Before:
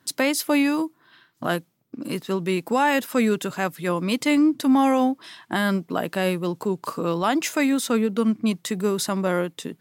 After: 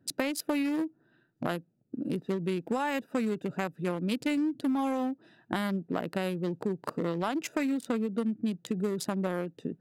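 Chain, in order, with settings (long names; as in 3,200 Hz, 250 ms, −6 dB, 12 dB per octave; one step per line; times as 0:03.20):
adaptive Wiener filter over 41 samples
downward compressor, threshold −27 dBFS, peak gain reduction 11.5 dB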